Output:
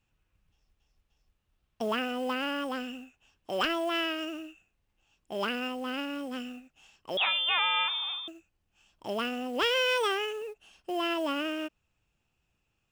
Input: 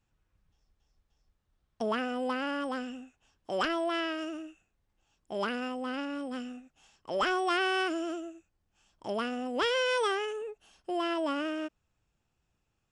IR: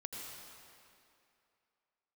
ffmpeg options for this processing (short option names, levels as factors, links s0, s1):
-filter_complex "[0:a]equalizer=f=2700:w=3:g=8,acrusher=bits=6:mode=log:mix=0:aa=0.000001,asettb=1/sr,asplit=3[s0][s1][s2];[s0]atrim=end=7.174[s3];[s1]atrim=start=7.17:end=8.28,asetpts=PTS-STARTPTS,afade=t=in:d=0.004:c=qsin,afade=t=out:st=1.106:d=0.004:c=qsin,lowpass=f=3300:t=q:w=0.5098,lowpass=f=3300:t=q:w=0.6013,lowpass=f=3300:t=q:w=0.9,lowpass=f=3300:t=q:w=2.563,afreqshift=-3900[s4];[s2]atrim=start=8.276[s5];[s3][s4]acrossfade=d=0.004:c1=hsin:c2=qsin[s6];[s6][s5]acrossfade=d=0.004:c1=qsin:c2=hsin"